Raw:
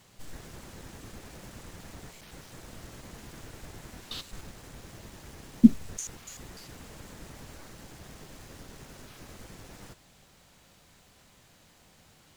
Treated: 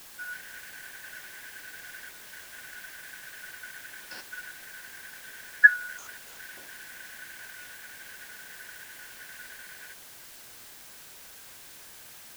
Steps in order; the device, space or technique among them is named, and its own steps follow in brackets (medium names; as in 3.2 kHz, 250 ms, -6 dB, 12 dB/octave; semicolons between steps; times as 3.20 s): split-band scrambled radio (four frequency bands reordered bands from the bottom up 4123; band-pass 310–3300 Hz; white noise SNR 13 dB)